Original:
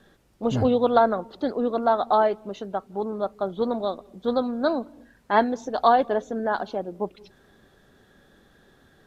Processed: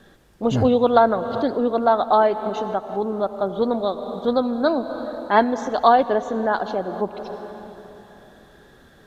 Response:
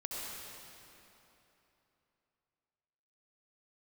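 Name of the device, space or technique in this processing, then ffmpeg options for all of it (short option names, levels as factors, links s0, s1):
ducked reverb: -filter_complex "[0:a]asplit=3[s0][s1][s2];[1:a]atrim=start_sample=2205[s3];[s1][s3]afir=irnorm=-1:irlink=0[s4];[s2]apad=whole_len=399924[s5];[s4][s5]sidechaincompress=threshold=0.0224:ratio=4:attack=5:release=199,volume=0.562[s6];[s0][s6]amix=inputs=2:normalize=0,volume=1.41"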